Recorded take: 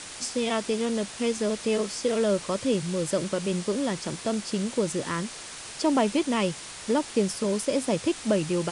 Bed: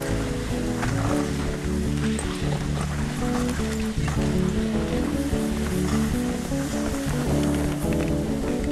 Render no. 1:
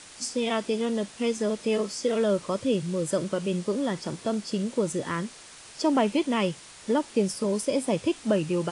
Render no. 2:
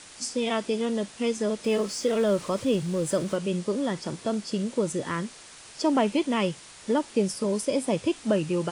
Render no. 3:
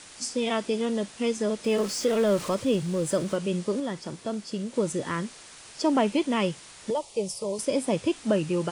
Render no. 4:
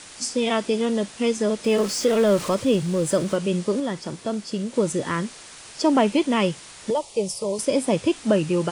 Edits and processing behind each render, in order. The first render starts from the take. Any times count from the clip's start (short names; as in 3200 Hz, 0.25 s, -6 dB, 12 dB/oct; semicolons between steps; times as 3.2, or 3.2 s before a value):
noise print and reduce 7 dB
1.64–3.36 G.711 law mismatch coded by mu
1.78–2.55 zero-crossing step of -38 dBFS; 3.8–4.74 gain -3.5 dB; 6.9–7.59 fixed phaser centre 650 Hz, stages 4
gain +4.5 dB